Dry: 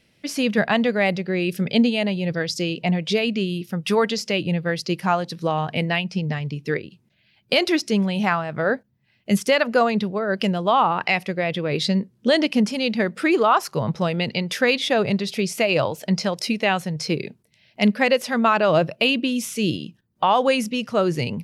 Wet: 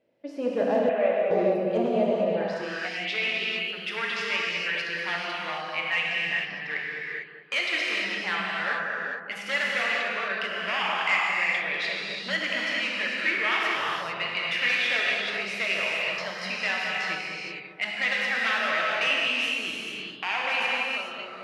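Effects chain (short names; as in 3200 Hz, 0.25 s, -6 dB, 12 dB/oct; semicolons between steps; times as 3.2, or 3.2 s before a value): ending faded out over 0.97 s; wavefolder -13.5 dBFS; analogue delay 0.202 s, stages 2048, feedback 57%, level -8.5 dB; non-linear reverb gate 0.48 s flat, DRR -4.5 dB; band-pass sweep 560 Hz -> 2100 Hz, 2.29–3.05; 0.89–1.31 speaker cabinet 350–3200 Hz, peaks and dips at 430 Hz -8 dB, 870 Hz -8 dB, 2500 Hz +9 dB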